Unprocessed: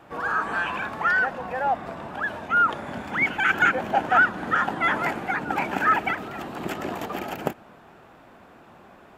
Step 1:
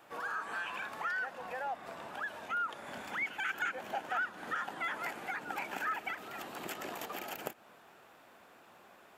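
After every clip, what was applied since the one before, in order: tilt EQ +3 dB/octave; compression 2:1, threshold -31 dBFS, peak gain reduction 10 dB; peaking EQ 490 Hz +2.5 dB 0.77 oct; trim -8.5 dB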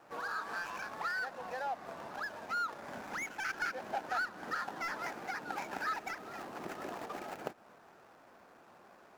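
median filter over 15 samples; trim +1 dB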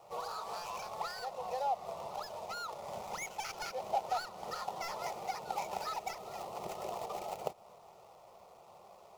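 static phaser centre 670 Hz, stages 4; trim +5 dB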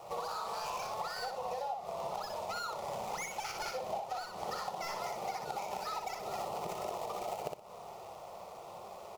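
compression, threshold -45 dBFS, peak gain reduction 16 dB; on a send: feedback delay 61 ms, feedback 22%, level -4.5 dB; on the sum: trim +8 dB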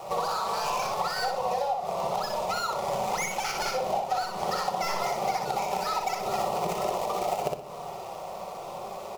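simulated room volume 1900 m³, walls furnished, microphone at 1.1 m; trim +9 dB

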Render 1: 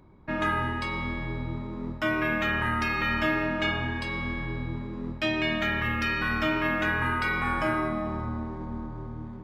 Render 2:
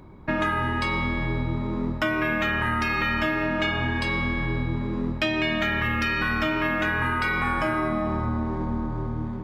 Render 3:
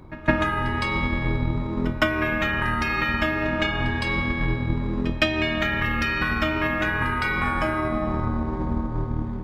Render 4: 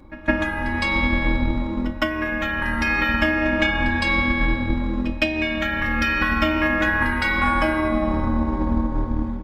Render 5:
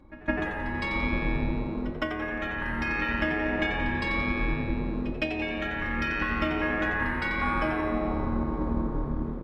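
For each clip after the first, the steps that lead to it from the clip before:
compression, threshold -30 dBFS, peak gain reduction 8.5 dB; trim +8.5 dB
octave divider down 2 oct, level -5 dB; transient shaper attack +8 dB, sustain -2 dB; pre-echo 162 ms -18 dB
comb 3.6 ms, depth 77%; level rider gain up to 5 dB; trim -3 dB
treble shelf 4.8 kHz -10 dB; on a send: frequency-shifting echo 88 ms, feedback 48%, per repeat +110 Hz, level -9 dB; on the sum: trim -7.5 dB

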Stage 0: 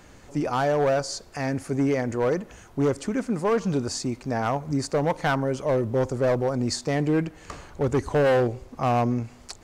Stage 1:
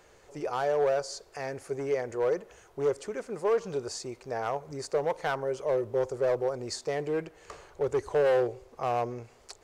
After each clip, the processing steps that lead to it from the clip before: resonant low shelf 330 Hz -6.5 dB, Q 3; trim -7 dB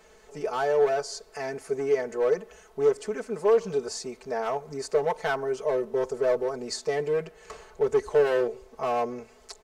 comb 4.6 ms, depth 97%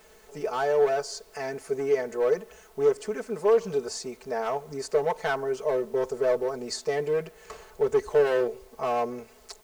added noise white -63 dBFS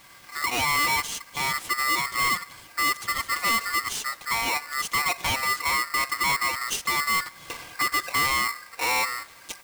recorder AGC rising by 6.5 dB/s; hard clipper -24.5 dBFS, distortion -8 dB; polarity switched at an audio rate 1.6 kHz; trim +3.5 dB

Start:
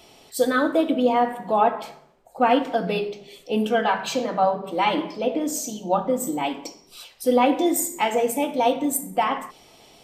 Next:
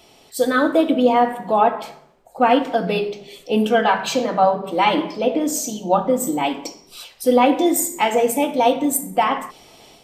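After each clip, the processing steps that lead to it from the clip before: level rider gain up to 5 dB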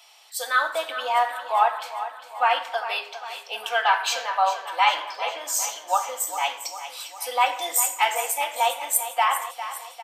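high-pass 840 Hz 24 dB/octave; on a send: feedback delay 402 ms, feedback 57%, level -12 dB

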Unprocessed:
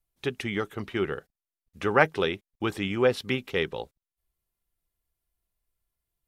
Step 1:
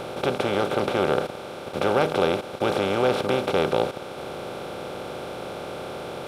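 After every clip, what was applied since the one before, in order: spectral levelling over time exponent 0.2; peaking EQ 1.8 kHz -14.5 dB 0.52 oct; trim -3.5 dB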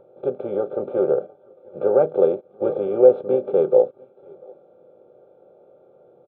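delay 696 ms -12.5 dB; spectral contrast expander 2.5:1; trim +3.5 dB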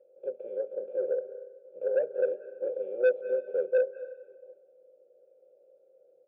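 vowel filter e; saturation -12.5 dBFS, distortion -12 dB; reverberation RT60 1.0 s, pre-delay 180 ms, DRR 15 dB; trim -5 dB

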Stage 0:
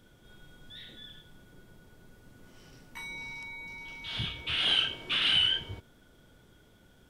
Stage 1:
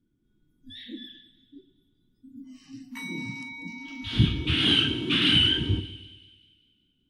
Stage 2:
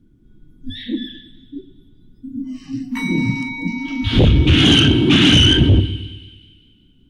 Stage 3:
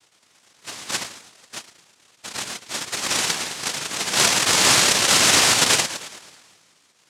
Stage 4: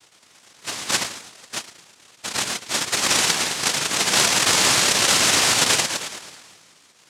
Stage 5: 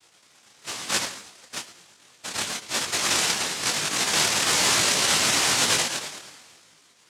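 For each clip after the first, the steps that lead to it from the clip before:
spectral noise reduction 30 dB; resonant low shelf 420 Hz +11.5 dB, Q 3; two-band feedback delay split 2.5 kHz, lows 109 ms, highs 193 ms, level -15.5 dB; trim +4 dB
tilt EQ -2 dB/octave; in parallel at +2 dB: peak limiter -14.5 dBFS, peak gain reduction 10.5 dB; on the sum: sine folder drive 8 dB, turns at -0.5 dBFS; trim -5.5 dB
noise-vocoded speech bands 1; trim -4.5 dB
compression 6:1, threshold -20 dBFS, peak gain reduction 8 dB; trim +5.5 dB
detune thickener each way 36 cents

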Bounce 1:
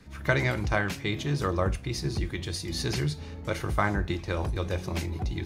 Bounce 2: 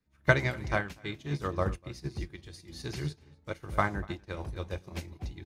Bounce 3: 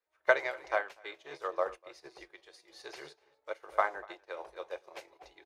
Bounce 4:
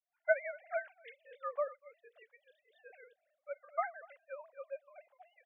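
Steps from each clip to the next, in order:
echo from a far wall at 42 m, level -12 dB; upward expansion 2.5:1, over -41 dBFS; trim +4 dB
inverse Chebyshev high-pass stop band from 250 Hz, stop band 40 dB; tilt EQ -3 dB/octave
formants replaced by sine waves; trim -5 dB

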